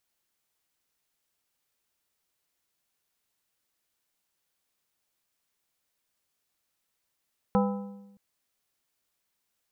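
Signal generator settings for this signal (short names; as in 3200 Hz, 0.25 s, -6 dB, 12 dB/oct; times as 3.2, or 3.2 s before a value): metal hit plate, length 0.62 s, lowest mode 200 Hz, modes 5, decay 1.07 s, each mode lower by 3 dB, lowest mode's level -20.5 dB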